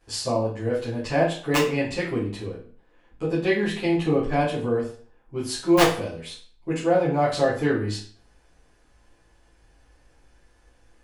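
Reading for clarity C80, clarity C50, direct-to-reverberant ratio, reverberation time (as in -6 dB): 10.5 dB, 5.5 dB, -12.0 dB, 0.45 s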